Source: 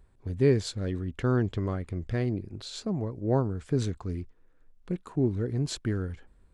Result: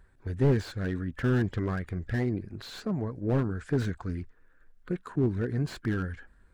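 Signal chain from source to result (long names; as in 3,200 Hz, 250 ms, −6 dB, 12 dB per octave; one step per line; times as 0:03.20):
spectral magnitudes quantised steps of 15 dB
parametric band 1,600 Hz +12 dB 0.64 octaves
slew-rate limiting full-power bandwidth 32 Hz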